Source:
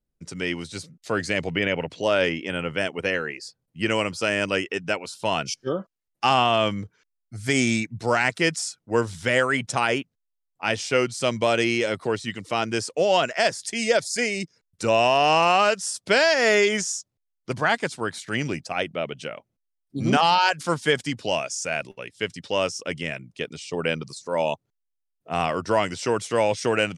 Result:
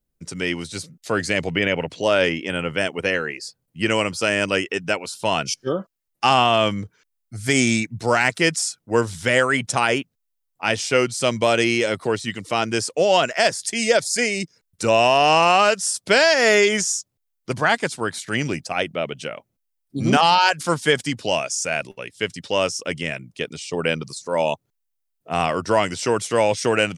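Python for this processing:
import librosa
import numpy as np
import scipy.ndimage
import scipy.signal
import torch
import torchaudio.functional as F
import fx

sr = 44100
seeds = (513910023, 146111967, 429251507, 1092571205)

y = fx.high_shelf(x, sr, hz=10000.0, db=9.0)
y = F.gain(torch.from_numpy(y), 3.0).numpy()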